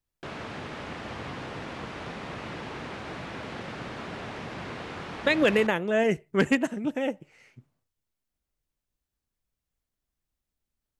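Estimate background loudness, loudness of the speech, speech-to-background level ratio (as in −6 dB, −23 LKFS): −38.0 LKFS, −25.5 LKFS, 12.5 dB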